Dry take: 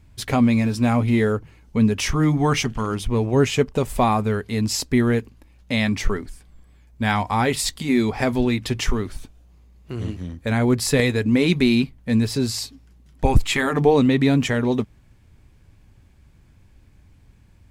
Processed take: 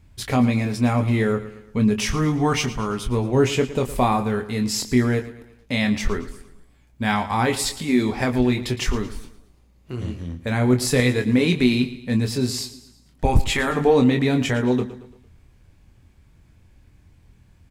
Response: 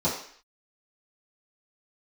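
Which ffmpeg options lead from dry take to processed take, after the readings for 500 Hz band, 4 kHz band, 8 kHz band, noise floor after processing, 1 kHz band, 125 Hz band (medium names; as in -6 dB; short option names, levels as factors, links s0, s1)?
-0.5 dB, -0.5 dB, -0.5 dB, -55 dBFS, -0.5 dB, -0.5 dB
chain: -filter_complex "[0:a]asplit=2[s0][s1];[s1]adelay=24,volume=0.473[s2];[s0][s2]amix=inputs=2:normalize=0,aecho=1:1:113|226|339|452:0.178|0.0818|0.0376|0.0173,volume=0.841"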